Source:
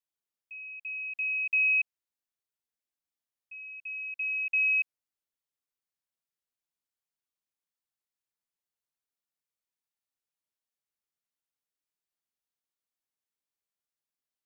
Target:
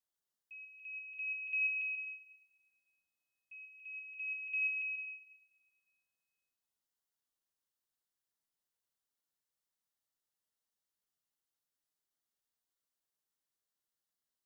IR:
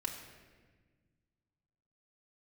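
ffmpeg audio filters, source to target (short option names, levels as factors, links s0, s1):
-filter_complex "[0:a]equalizer=f=2400:w=6.4:g=-12.5,asplit=2[s0][s1];[1:a]atrim=start_sample=2205,highshelf=f=2400:g=11,adelay=136[s2];[s1][s2]afir=irnorm=-1:irlink=0,volume=0.188[s3];[s0][s3]amix=inputs=2:normalize=0"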